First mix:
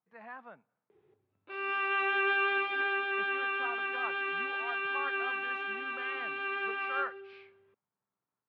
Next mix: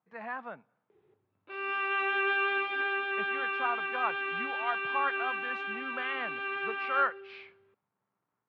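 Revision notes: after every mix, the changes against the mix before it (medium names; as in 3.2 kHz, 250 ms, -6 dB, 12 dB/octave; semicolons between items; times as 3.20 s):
speech +8.0 dB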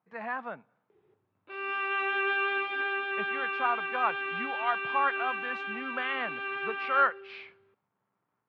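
speech +3.5 dB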